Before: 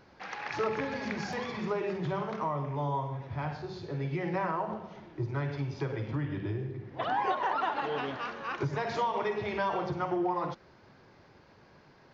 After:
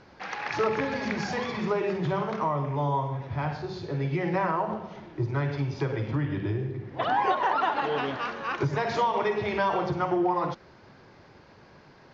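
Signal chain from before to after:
Butterworth low-pass 8,100 Hz
level +5 dB

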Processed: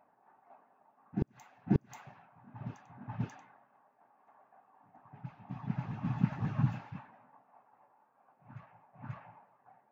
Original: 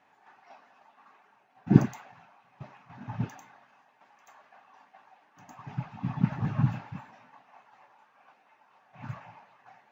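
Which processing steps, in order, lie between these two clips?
low-pass that shuts in the quiet parts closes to 830 Hz, open at −27.5 dBFS
on a send: backwards echo 537 ms −6.5 dB
on the sum: gate with flip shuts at −10 dBFS, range −37 dB
level −4.5 dB

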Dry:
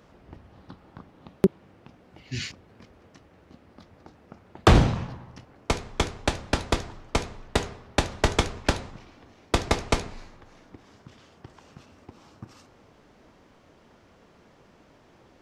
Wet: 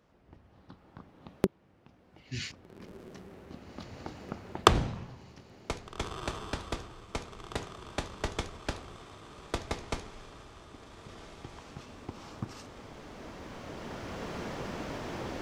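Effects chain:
camcorder AGC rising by 7.6 dB per second
on a send: feedback delay with all-pass diffusion 1,639 ms, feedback 62%, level −14 dB
on the sum: level −12 dB

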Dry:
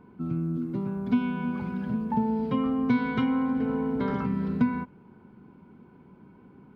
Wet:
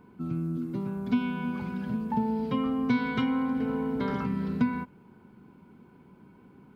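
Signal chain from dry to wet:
high-shelf EQ 3,100 Hz +9.5 dB
level −2 dB

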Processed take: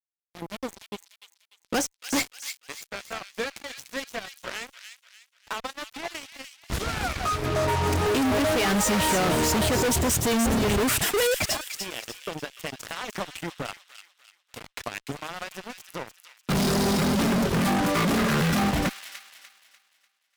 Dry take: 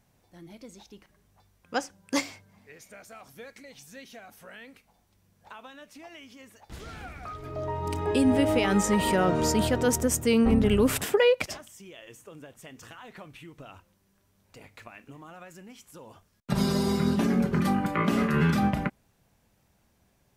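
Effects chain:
reverb reduction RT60 0.61 s
fuzz pedal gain 43 dB, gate −45 dBFS
delay with a high-pass on its return 296 ms, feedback 39%, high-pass 2,400 Hz, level −6 dB
level −8.5 dB

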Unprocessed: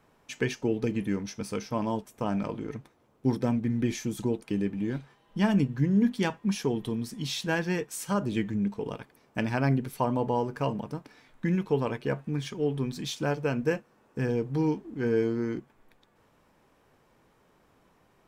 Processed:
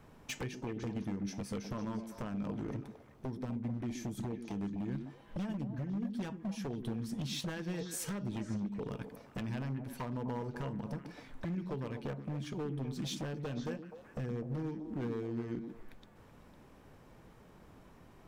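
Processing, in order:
low-shelf EQ 210 Hz +10 dB
downward compressor 16 to 1, threshold −36 dBFS, peak gain reduction 22.5 dB
wave folding −34 dBFS
on a send: echo through a band-pass that steps 126 ms, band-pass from 250 Hz, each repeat 1.4 octaves, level −3.5 dB
on the sum: level +2 dB

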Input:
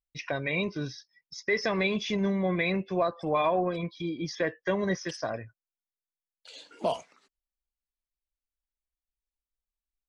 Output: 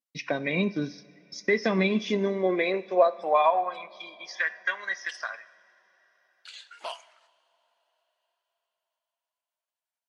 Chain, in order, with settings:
transient designer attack +3 dB, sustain −5 dB
high-pass filter sweep 210 Hz → 1,500 Hz, 0:01.82–0:04.31
on a send at −16 dB: convolution reverb, pre-delay 3 ms
on the sum: Ogg Vorbis 64 kbit/s 44,100 Hz

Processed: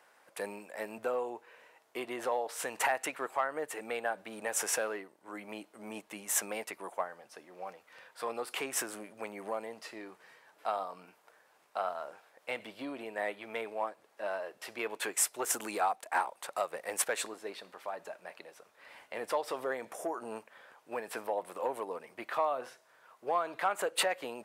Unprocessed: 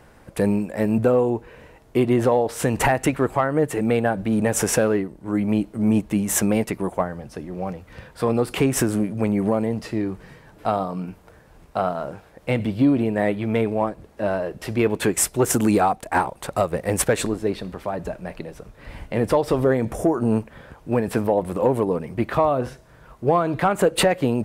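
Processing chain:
high-pass filter 730 Hz 12 dB per octave
level −8 dB

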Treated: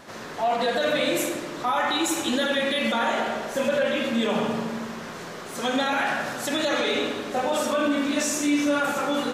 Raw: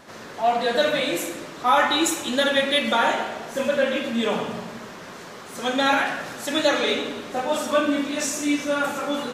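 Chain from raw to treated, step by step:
brickwall limiter −17.5 dBFS, peak gain reduction 11 dB
feedback echo with a low-pass in the loop 79 ms, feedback 69%, low-pass 2,000 Hz, level −8 dB
level +1.5 dB

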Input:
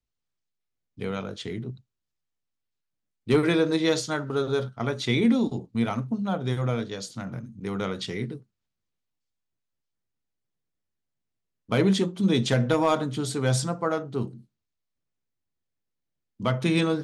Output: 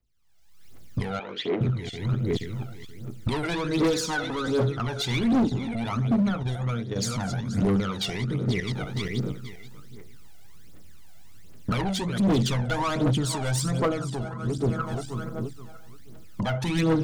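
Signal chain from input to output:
feedback delay that plays each chunk backwards 239 ms, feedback 46%, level −14 dB
camcorder AGC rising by 44 dB per second
0:03.81–0:04.61: comb filter 4 ms, depth 65%
0:06.43–0:06.96: noise gate −25 dBFS, range −11 dB
soft clipping −23 dBFS, distortion −10 dB
phase shifter 1.3 Hz, delay 1.5 ms, feedback 68%
gain into a clipping stage and back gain 18.5 dB
0:01.19–0:01.61: Chebyshev band-pass filter 350–2,800 Hz, order 2

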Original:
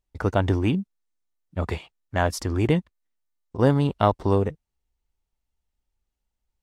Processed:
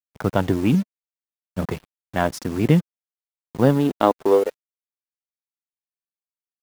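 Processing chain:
hold until the input has moved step −36 dBFS
high-pass filter sweep 150 Hz → 820 Hz, 0:03.52–0:04.87
dead-zone distortion −37.5 dBFS
phase shifter 0.59 Hz, delay 4.7 ms, feedback 21%
level +1.5 dB

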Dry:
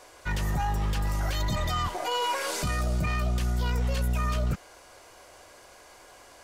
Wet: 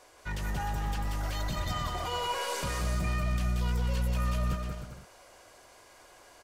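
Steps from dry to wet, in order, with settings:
bouncing-ball delay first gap 180 ms, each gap 0.7×, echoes 5
0:01.87–0:03.08: surface crackle 550 per second −42 dBFS
level −6 dB

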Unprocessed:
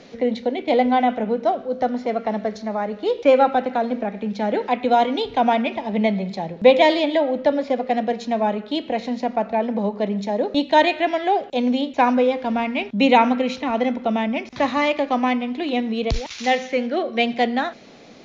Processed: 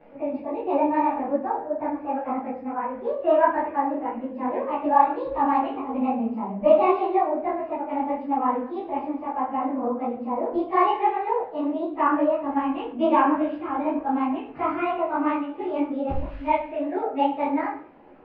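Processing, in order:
phase-vocoder pitch shift without resampling +3 semitones
low-pass filter 2,000 Hz 24 dB per octave
low-shelf EQ 150 Hz +3 dB
mains-hum notches 60/120/180/240 Hz
on a send at −1.5 dB: convolution reverb RT60 0.55 s, pre-delay 6 ms
on the sum: micro pitch shift up and down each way 58 cents

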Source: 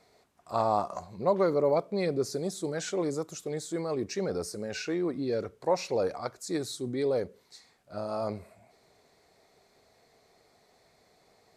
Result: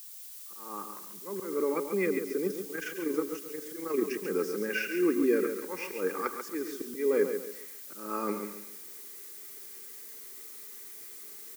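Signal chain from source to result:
fade in at the beginning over 3.15 s
Chebyshev high-pass filter 190 Hz, order 5
high-frequency loss of the air 290 metres
phaser with its sweep stopped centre 1,700 Hz, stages 4
comb filter 2.5 ms, depth 47%
single-tap delay 109 ms −17 dB
volume swells 213 ms
0:02.47–0:04.25: amplitude modulation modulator 25 Hz, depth 40%
background noise blue −65 dBFS
high-shelf EQ 3,000 Hz +10.5 dB
feedback echo at a low word length 138 ms, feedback 35%, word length 11 bits, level −7.5 dB
level +8.5 dB

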